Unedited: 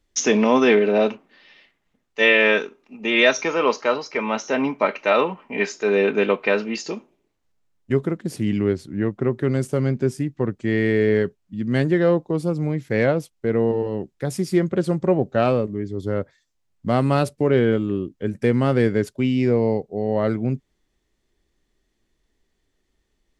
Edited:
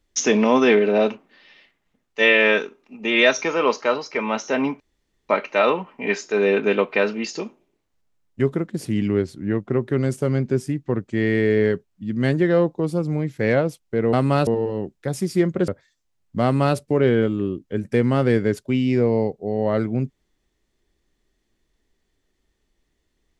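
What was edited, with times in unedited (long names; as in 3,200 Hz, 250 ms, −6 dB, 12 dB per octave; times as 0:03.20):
0:04.80: splice in room tone 0.49 s
0:14.85–0:16.18: remove
0:16.93–0:17.27: duplicate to 0:13.64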